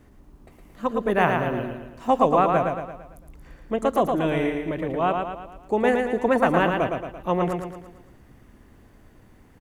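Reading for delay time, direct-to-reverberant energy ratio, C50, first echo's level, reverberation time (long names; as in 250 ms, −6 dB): 113 ms, no reverb audible, no reverb audible, −4.5 dB, no reverb audible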